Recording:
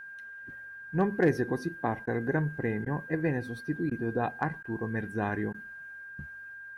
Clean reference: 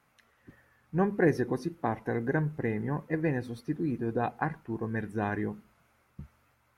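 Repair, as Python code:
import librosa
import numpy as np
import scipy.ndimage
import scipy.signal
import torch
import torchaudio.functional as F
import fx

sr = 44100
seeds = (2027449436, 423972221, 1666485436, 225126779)

y = fx.fix_declip(x, sr, threshold_db=-15.5)
y = fx.notch(y, sr, hz=1600.0, q=30.0)
y = fx.fix_interpolate(y, sr, at_s=(2.06, 2.85, 3.9, 4.63, 5.53), length_ms=11.0)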